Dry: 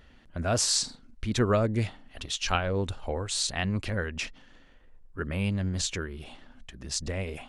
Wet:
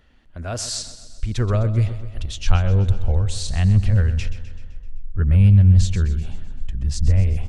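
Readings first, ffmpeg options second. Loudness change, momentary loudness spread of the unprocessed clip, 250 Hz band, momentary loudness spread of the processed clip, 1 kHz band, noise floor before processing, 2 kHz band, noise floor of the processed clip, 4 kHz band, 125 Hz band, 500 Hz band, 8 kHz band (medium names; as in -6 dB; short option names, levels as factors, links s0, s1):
+10.0 dB, 14 LU, +5.5 dB, 19 LU, -1.5 dB, -56 dBFS, -2.0 dB, -43 dBFS, -2.0 dB, +16.0 dB, -1.0 dB, -2.0 dB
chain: -filter_complex "[0:a]asubboost=boost=11.5:cutoff=100,aecho=1:1:128|256|384|512|640|768:0.211|0.12|0.0687|0.0391|0.0223|0.0127,acrossover=split=580[s0][s1];[s0]dynaudnorm=f=630:g=5:m=2.82[s2];[s2][s1]amix=inputs=2:normalize=0,volume=0.794"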